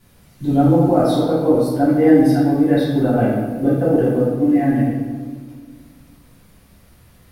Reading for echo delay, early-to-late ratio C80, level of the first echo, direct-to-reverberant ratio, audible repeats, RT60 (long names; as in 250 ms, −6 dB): no echo audible, 3.0 dB, no echo audible, −11.5 dB, no echo audible, 1.6 s